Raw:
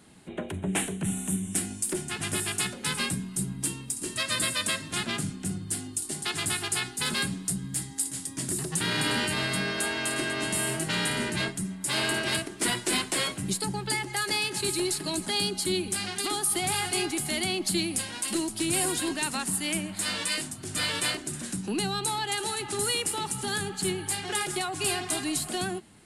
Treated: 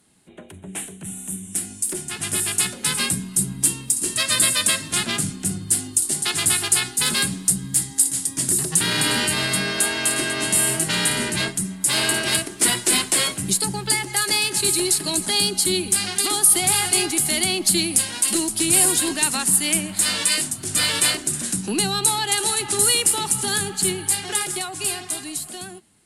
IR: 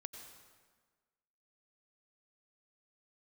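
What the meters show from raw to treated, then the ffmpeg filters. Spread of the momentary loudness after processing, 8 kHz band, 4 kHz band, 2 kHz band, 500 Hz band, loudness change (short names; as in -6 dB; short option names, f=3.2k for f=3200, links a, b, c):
8 LU, +11.5 dB, +7.5 dB, +5.5 dB, +4.0 dB, +9.0 dB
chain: -af "dynaudnorm=f=380:g=11:m=15dB,aemphasis=mode=production:type=cd,volume=-7.5dB"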